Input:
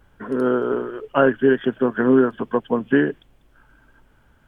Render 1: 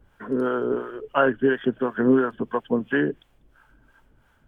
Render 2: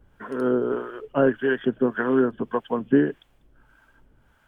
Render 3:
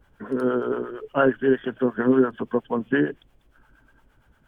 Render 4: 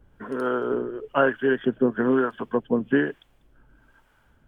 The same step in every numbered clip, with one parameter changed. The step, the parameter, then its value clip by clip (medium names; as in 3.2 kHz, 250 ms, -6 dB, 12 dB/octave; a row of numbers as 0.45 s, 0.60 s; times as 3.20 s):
harmonic tremolo, rate: 2.9 Hz, 1.7 Hz, 8.6 Hz, 1.1 Hz